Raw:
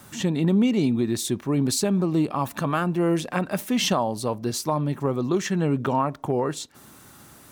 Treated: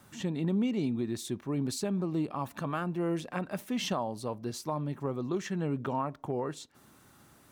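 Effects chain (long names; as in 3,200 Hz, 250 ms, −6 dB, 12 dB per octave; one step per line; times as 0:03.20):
high-shelf EQ 4,800 Hz −5 dB
level −9 dB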